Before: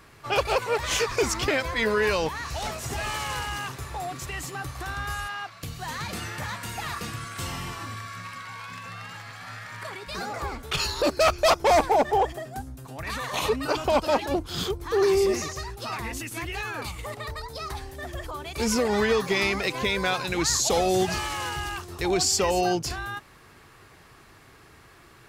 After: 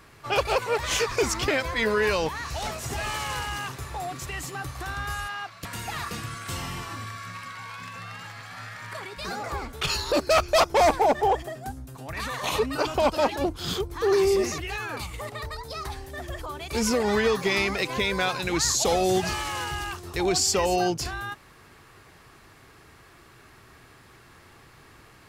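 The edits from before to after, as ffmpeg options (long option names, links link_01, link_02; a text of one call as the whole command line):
ffmpeg -i in.wav -filter_complex "[0:a]asplit=3[link_01][link_02][link_03];[link_01]atrim=end=5.652[link_04];[link_02]atrim=start=6.548:end=15.482[link_05];[link_03]atrim=start=16.428[link_06];[link_04][link_05]acrossfade=duration=0.004:curve1=hsin:curve2=hsin[link_07];[link_07][link_06]acrossfade=duration=0.004:curve1=hsin:curve2=hsin" out.wav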